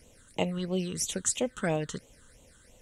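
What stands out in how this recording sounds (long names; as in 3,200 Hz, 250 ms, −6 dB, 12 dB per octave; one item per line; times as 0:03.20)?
phaser sweep stages 8, 3 Hz, lowest notch 660–1,600 Hz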